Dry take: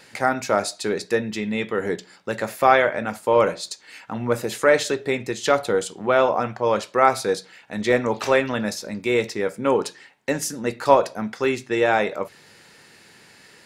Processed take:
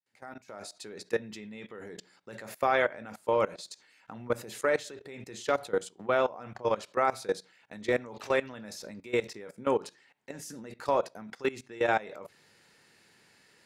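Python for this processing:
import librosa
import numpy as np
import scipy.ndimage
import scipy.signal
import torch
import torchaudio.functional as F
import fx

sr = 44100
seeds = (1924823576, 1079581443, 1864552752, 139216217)

y = fx.fade_in_head(x, sr, length_s=1.17)
y = fx.level_steps(y, sr, step_db=19)
y = y * 10.0 ** (-5.5 / 20.0)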